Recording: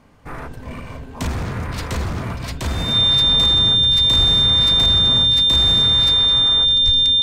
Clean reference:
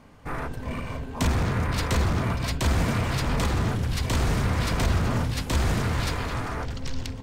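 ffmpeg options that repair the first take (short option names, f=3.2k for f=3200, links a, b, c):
-filter_complex "[0:a]bandreject=f=3.6k:w=30,asplit=3[a][b][c];[a]afade=t=out:st=4.17:d=0.02[d];[b]highpass=f=140:w=0.5412,highpass=f=140:w=1.3066,afade=t=in:st=4.17:d=0.02,afade=t=out:st=4.29:d=0.02[e];[c]afade=t=in:st=4.29:d=0.02[f];[d][e][f]amix=inputs=3:normalize=0,asplit=3[g][h][i];[g]afade=t=out:st=6.85:d=0.02[j];[h]highpass=f=140:w=0.5412,highpass=f=140:w=1.3066,afade=t=in:st=6.85:d=0.02,afade=t=out:st=6.97:d=0.02[k];[i]afade=t=in:st=6.97:d=0.02[l];[j][k][l]amix=inputs=3:normalize=0"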